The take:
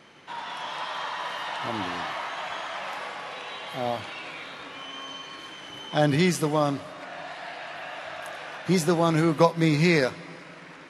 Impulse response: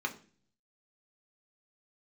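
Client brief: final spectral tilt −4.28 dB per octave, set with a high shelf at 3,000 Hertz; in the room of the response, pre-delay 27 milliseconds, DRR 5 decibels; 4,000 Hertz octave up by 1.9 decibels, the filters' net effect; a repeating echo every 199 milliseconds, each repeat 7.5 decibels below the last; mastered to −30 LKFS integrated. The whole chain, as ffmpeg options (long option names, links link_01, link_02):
-filter_complex "[0:a]highshelf=frequency=3000:gain=-4,equalizer=frequency=4000:width_type=o:gain=5.5,aecho=1:1:199|398|597|796|995:0.422|0.177|0.0744|0.0312|0.0131,asplit=2[link_01][link_02];[1:a]atrim=start_sample=2205,adelay=27[link_03];[link_02][link_03]afir=irnorm=-1:irlink=0,volume=-10dB[link_04];[link_01][link_04]amix=inputs=2:normalize=0,volume=-4dB"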